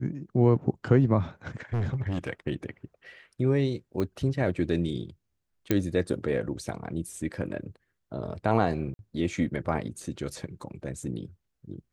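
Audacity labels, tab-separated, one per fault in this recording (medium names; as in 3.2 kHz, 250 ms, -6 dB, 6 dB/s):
1.730000	2.280000	clipped -25 dBFS
4.000000	4.000000	pop -18 dBFS
5.710000	5.710000	pop -10 dBFS
8.940000	8.990000	dropout 51 ms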